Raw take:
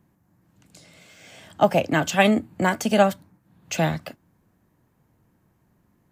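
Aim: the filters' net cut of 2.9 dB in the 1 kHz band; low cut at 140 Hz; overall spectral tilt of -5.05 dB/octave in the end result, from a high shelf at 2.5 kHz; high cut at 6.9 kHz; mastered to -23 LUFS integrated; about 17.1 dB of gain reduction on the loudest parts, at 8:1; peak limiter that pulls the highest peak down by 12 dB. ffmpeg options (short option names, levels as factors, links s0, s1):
-af "highpass=140,lowpass=6900,equalizer=f=1000:t=o:g=-3,highshelf=f=2500:g=-8,acompressor=threshold=0.0251:ratio=8,volume=10.6,alimiter=limit=0.266:level=0:latency=1"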